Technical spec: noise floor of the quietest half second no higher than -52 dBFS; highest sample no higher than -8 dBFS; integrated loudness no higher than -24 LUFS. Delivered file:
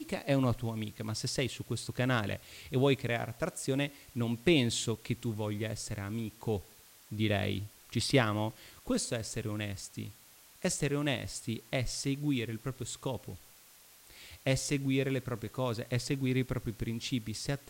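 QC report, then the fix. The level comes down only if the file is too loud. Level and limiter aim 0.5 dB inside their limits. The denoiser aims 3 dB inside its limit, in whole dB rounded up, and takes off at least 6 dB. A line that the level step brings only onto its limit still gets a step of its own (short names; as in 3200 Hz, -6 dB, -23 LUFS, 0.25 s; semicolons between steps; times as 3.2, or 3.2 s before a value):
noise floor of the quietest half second -58 dBFS: OK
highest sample -12.0 dBFS: OK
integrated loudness -33.5 LUFS: OK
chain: none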